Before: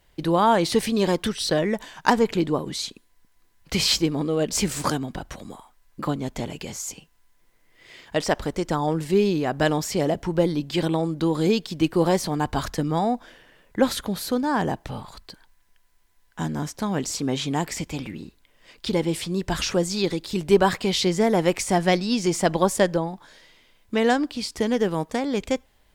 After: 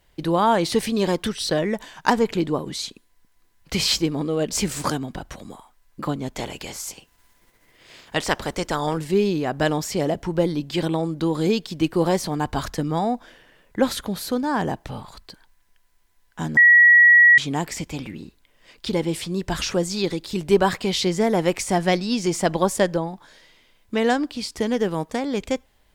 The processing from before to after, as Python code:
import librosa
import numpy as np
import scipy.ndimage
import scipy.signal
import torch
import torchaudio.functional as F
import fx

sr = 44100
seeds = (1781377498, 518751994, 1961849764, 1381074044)

y = fx.spec_clip(x, sr, under_db=13, at=(6.35, 8.97), fade=0.02)
y = fx.edit(y, sr, fx.bleep(start_s=16.57, length_s=0.81, hz=1920.0, db=-8.5), tone=tone)